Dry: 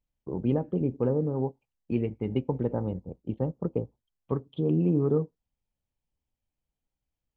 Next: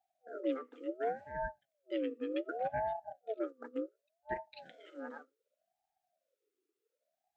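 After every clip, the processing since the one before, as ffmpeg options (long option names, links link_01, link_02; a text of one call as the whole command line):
ffmpeg -i in.wav -af "afftfilt=real='re*(1-between(b*sr/4096,130,790))':imag='im*(1-between(b*sr/4096,130,790))':win_size=4096:overlap=0.75,aeval=exprs='val(0)*sin(2*PI*570*n/s+570*0.35/0.67*sin(2*PI*0.67*n/s))':channel_layout=same,volume=2dB" out.wav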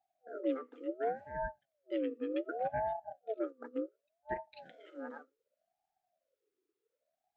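ffmpeg -i in.wav -af "highshelf=frequency=2900:gain=-8,volume=1dB" out.wav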